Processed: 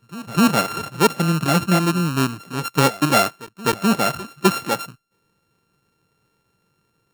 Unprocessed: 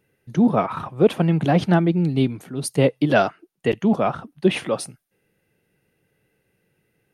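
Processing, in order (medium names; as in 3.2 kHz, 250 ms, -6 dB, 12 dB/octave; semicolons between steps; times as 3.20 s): sorted samples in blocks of 32 samples; reverse echo 254 ms -19 dB; gain riding within 3 dB 2 s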